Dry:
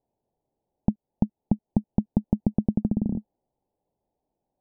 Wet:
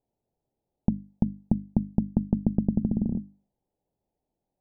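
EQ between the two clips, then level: bass shelf 380 Hz +7.5 dB; hum notches 50/100/150/200/250/300 Hz; -5.5 dB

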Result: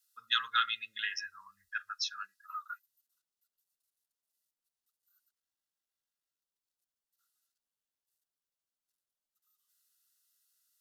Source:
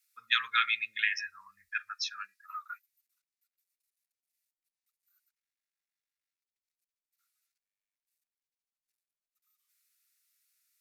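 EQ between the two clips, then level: Butterworth band-stop 2.3 kHz, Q 3.3; band-stop 1.8 kHz, Q 7.4; 0.0 dB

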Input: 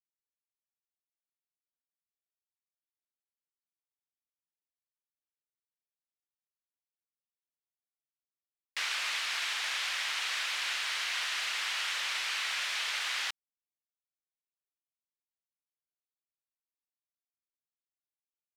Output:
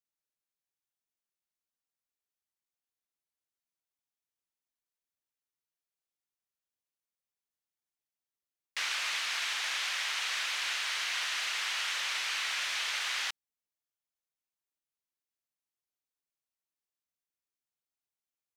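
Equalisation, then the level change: peaking EQ 6.2 kHz +2.5 dB 0.21 oct; 0.0 dB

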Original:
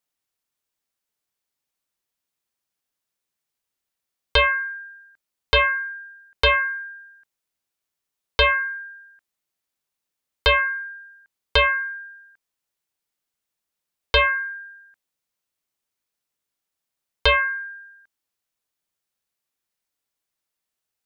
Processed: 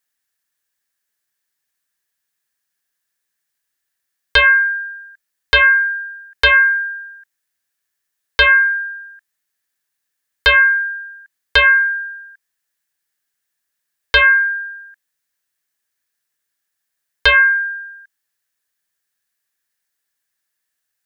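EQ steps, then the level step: peaking EQ 1.7 kHz +14.5 dB 0.4 oct; treble shelf 3.4 kHz +9 dB; -1.0 dB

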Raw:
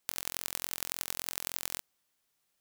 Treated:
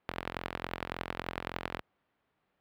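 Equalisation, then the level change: high-pass 46 Hz; distance through air 440 m; treble shelf 2.4 kHz -8.5 dB; +11.5 dB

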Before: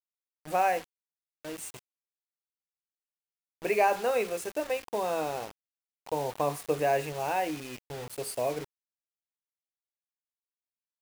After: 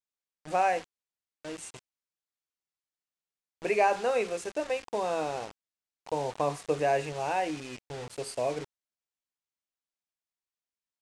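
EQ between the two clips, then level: low-pass 8.7 kHz 24 dB/octave; 0.0 dB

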